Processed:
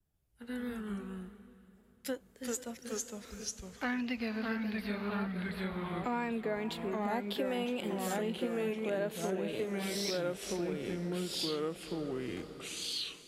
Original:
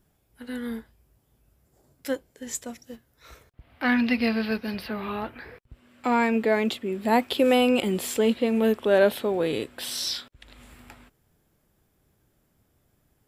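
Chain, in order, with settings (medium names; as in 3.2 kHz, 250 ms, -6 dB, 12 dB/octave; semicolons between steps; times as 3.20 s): ever faster or slower copies 137 ms, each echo -2 st, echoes 2; vibrato 1.8 Hz 46 cents; on a send: echo that smears into a reverb 454 ms, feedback 48%, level -14 dB; on the sum: compression 5:1, threshold -30 dBFS, peak gain reduction 15 dB; three bands expanded up and down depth 40%; trim -3 dB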